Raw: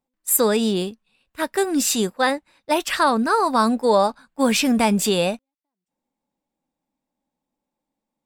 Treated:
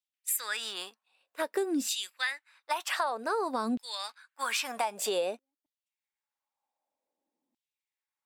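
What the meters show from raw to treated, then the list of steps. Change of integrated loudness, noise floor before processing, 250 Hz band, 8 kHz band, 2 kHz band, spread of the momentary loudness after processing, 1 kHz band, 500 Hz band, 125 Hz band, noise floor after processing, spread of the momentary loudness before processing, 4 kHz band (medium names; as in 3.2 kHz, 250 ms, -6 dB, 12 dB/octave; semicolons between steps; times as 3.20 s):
-12.0 dB, -85 dBFS, -16.0 dB, -11.0 dB, -8.5 dB, 9 LU, -12.5 dB, -13.5 dB, under -25 dB, under -85 dBFS, 8 LU, -8.5 dB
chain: LFO high-pass saw down 0.53 Hz 250–3400 Hz; compression 6:1, threshold -21 dBFS, peak gain reduction 12 dB; trim -6.5 dB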